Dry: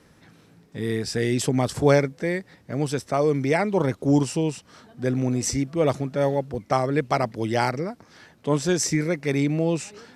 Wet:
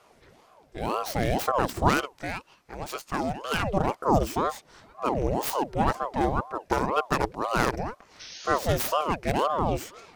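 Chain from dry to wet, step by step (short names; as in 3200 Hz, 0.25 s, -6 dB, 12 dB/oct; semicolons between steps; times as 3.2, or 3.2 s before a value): tracing distortion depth 0.25 ms; 1.89–3.63 HPF 700 Hz 6 dB/oct; 8.22–8.56 spectral repair 2000–6100 Hz after; ring modulator with a swept carrier 560 Hz, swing 65%, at 2 Hz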